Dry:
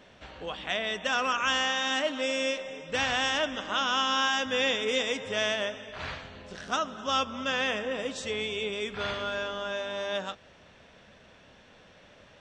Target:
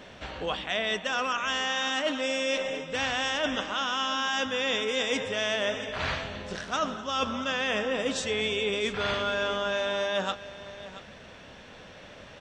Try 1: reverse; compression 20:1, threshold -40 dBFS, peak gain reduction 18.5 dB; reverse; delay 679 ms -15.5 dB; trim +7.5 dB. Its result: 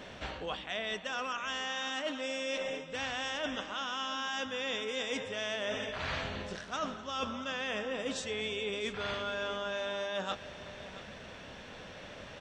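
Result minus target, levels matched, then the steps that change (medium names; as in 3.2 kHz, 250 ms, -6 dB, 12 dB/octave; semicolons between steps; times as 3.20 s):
compression: peak gain reduction +7.5 dB
change: compression 20:1, threshold -32 dBFS, peak gain reduction 11 dB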